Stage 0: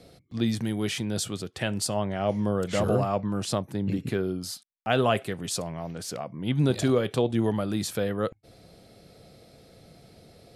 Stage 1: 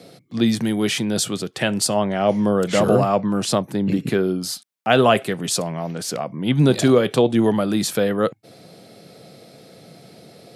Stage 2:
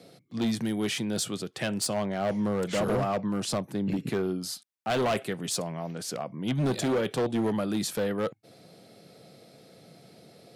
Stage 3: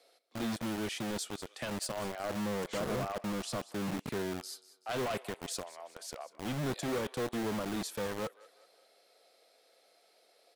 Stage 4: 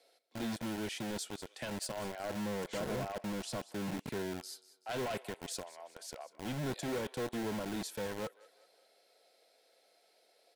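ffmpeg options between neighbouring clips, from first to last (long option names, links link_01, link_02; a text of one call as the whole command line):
ffmpeg -i in.wav -af "highpass=frequency=130:width=0.5412,highpass=frequency=130:width=1.3066,volume=8.5dB" out.wav
ffmpeg -i in.wav -af "volume=14.5dB,asoftclip=hard,volume=-14.5dB,volume=-8dB" out.wav
ffmpeg -i in.wav -filter_complex "[0:a]acrossover=split=470[link_01][link_02];[link_01]acrusher=bits=4:mix=0:aa=0.000001[link_03];[link_02]aecho=1:1:190|380|570|760:0.15|0.0688|0.0317|0.0146[link_04];[link_03][link_04]amix=inputs=2:normalize=0,volume=-8.5dB" out.wav
ffmpeg -i in.wav -af "asuperstop=centerf=1200:order=4:qfactor=8,volume=-2.5dB" out.wav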